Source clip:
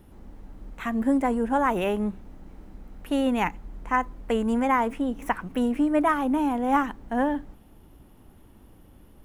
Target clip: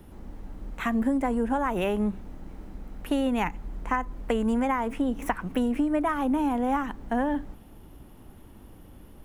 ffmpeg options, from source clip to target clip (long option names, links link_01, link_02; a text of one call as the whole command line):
ffmpeg -i in.wav -filter_complex "[0:a]acrossover=split=130[link_01][link_02];[link_02]acompressor=threshold=-26dB:ratio=10[link_03];[link_01][link_03]amix=inputs=2:normalize=0,volume=3.5dB" out.wav